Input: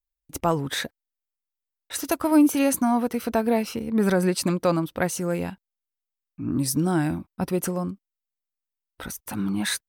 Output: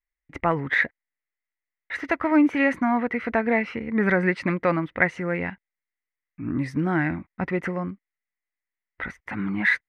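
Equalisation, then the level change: resonant low-pass 2 kHz, resonance Q 8.7; -1.5 dB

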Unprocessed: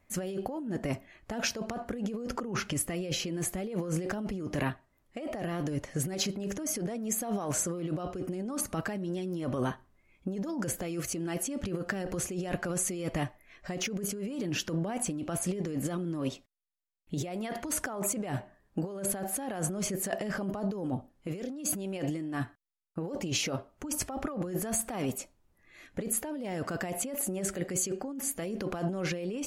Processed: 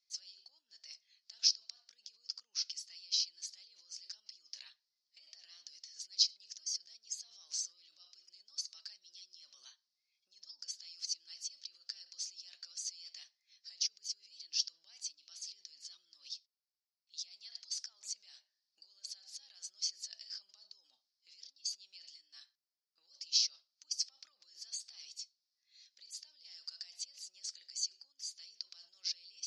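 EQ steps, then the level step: Butterworth band-pass 4.9 kHz, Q 3.6; distance through air 52 m; +11.0 dB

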